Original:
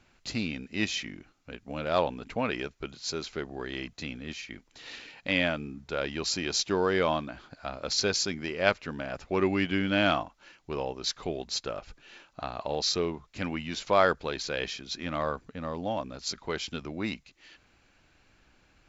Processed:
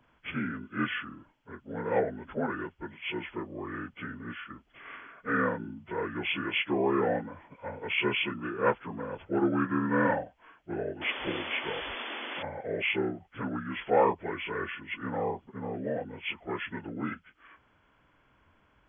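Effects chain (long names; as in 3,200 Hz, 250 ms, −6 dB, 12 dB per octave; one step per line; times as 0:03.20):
partials spread apart or drawn together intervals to 77%
sound drawn into the spectrogram noise, 0:11.01–0:12.43, 220–3,500 Hz −38 dBFS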